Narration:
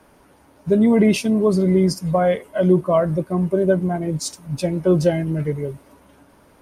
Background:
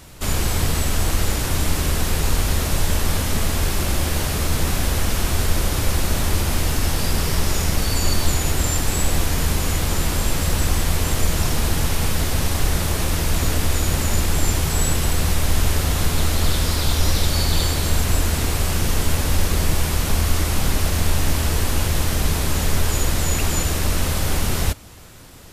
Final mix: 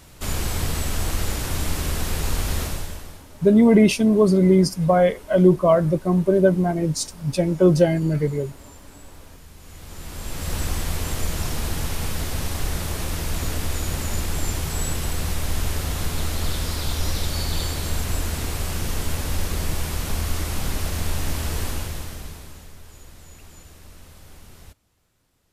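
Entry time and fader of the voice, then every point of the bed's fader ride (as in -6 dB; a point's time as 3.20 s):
2.75 s, +1.0 dB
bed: 2.63 s -4.5 dB
3.27 s -25.5 dB
9.52 s -25.5 dB
10.55 s -6 dB
21.67 s -6 dB
22.76 s -25 dB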